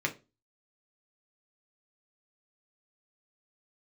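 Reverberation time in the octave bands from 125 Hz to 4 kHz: 0.35 s, 0.35 s, 0.30 s, 0.25 s, 0.25 s, 0.25 s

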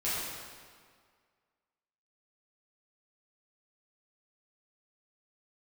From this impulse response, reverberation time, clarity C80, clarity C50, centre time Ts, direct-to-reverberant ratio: 1.9 s, -0.5 dB, -3.0 dB, 124 ms, -11.0 dB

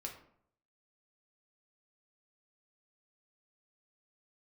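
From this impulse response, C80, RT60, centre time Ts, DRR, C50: 11.5 dB, 0.65 s, 21 ms, 0.5 dB, 8.0 dB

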